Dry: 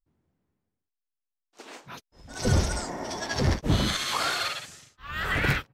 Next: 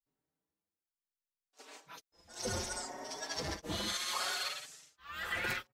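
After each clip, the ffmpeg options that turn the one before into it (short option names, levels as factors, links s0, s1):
-filter_complex "[0:a]bass=f=250:g=-12,treble=f=4000:g=5,asplit=2[s0][s1];[s1]adelay=4.9,afreqshift=0.68[s2];[s0][s2]amix=inputs=2:normalize=1,volume=0.473"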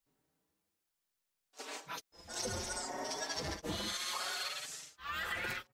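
-af "acompressor=threshold=0.00562:ratio=6,volume=2.66"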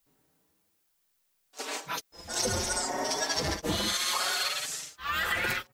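-af "highshelf=f=12000:g=6,volume=2.82"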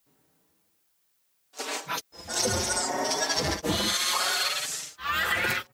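-af "highpass=65,volume=1.41"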